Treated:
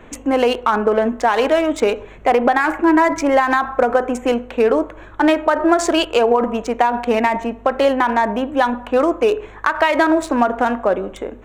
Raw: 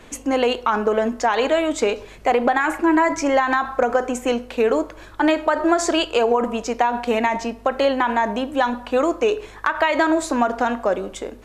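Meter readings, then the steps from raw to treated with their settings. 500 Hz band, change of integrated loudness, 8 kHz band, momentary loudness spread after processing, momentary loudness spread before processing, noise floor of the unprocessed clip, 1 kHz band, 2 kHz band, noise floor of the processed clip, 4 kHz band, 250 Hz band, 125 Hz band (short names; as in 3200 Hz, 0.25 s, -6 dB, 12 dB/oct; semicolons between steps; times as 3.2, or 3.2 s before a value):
+3.5 dB, +3.0 dB, -1.0 dB, 6 LU, 6 LU, -42 dBFS, +3.0 dB, +2.5 dB, -39 dBFS, +1.0 dB, +3.5 dB, n/a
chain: Wiener smoothing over 9 samples; gain +3.5 dB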